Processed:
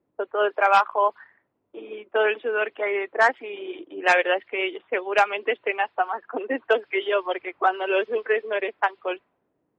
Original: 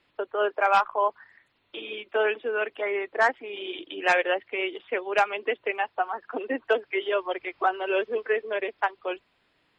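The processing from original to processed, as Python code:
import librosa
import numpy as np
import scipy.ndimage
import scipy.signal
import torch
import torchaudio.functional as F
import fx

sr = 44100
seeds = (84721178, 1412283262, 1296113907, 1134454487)

y = fx.highpass(x, sr, hz=200.0, slope=6)
y = fx.env_lowpass(y, sr, base_hz=440.0, full_db=-22.0)
y = y * 10.0 ** (3.5 / 20.0)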